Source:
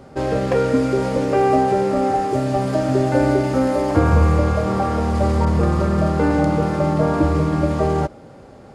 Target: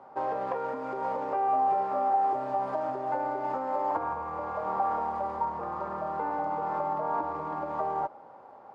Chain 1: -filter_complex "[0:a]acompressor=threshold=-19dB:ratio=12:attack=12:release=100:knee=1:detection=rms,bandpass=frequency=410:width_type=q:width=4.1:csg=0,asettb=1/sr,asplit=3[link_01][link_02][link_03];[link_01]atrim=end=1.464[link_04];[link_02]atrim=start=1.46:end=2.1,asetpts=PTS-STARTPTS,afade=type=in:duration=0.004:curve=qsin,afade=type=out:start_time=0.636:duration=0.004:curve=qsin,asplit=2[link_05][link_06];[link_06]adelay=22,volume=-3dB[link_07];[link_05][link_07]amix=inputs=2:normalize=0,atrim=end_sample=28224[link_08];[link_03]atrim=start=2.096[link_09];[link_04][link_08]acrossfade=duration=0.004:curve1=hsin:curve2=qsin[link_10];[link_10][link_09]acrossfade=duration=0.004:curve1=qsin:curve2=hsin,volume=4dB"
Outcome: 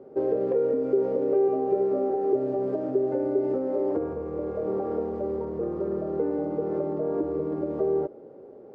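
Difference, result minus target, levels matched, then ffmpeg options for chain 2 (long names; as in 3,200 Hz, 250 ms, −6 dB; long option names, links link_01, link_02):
1,000 Hz band −15.5 dB
-filter_complex "[0:a]acompressor=threshold=-19dB:ratio=12:attack=12:release=100:knee=1:detection=rms,bandpass=frequency=920:width_type=q:width=4.1:csg=0,asettb=1/sr,asplit=3[link_01][link_02][link_03];[link_01]atrim=end=1.464[link_04];[link_02]atrim=start=1.46:end=2.1,asetpts=PTS-STARTPTS,afade=type=in:duration=0.004:curve=qsin,afade=type=out:start_time=0.636:duration=0.004:curve=qsin,asplit=2[link_05][link_06];[link_06]adelay=22,volume=-3dB[link_07];[link_05][link_07]amix=inputs=2:normalize=0,atrim=end_sample=28224[link_08];[link_03]atrim=start=2.096[link_09];[link_04][link_08]acrossfade=duration=0.004:curve1=hsin:curve2=qsin[link_10];[link_10][link_09]acrossfade=duration=0.004:curve1=qsin:curve2=hsin,volume=4dB"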